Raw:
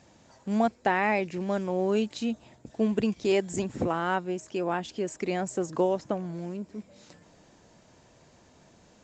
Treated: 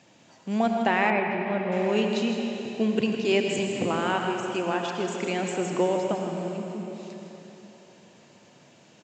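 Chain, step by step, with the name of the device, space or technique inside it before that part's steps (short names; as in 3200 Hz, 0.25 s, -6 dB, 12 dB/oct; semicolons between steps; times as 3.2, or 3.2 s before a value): PA in a hall (HPF 120 Hz 24 dB/oct; bell 2800 Hz +7 dB 0.77 oct; echo 0.159 s -9 dB; reverb RT60 3.6 s, pre-delay 62 ms, DRR 3 dB); 1.1–1.72 air absorption 330 m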